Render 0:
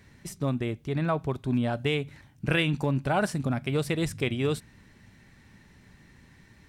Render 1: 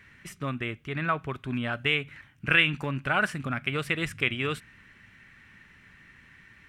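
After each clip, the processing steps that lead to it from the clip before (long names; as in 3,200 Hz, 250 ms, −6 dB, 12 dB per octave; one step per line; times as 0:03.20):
flat-topped bell 1,900 Hz +12.5 dB
level −5 dB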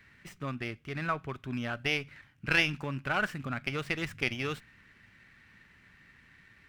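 windowed peak hold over 3 samples
level −4.5 dB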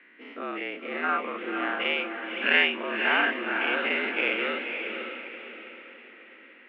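every bin's largest magnitude spread in time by 120 ms
feedback delay with all-pass diffusion 532 ms, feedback 42%, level −5.5 dB
single-sideband voice off tune +87 Hz 170–3,000 Hz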